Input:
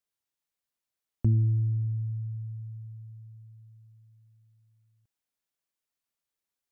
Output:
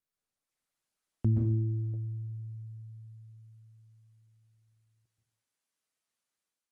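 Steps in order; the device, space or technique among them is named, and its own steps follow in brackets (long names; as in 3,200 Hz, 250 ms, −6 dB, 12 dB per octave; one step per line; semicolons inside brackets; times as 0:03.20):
far-field microphone of a smart speaker (convolution reverb RT60 0.50 s, pre-delay 118 ms, DRR −0.5 dB; high-pass filter 120 Hz 6 dB per octave; automatic gain control gain up to 6.5 dB; level −6.5 dB; Opus 32 kbit/s 48,000 Hz)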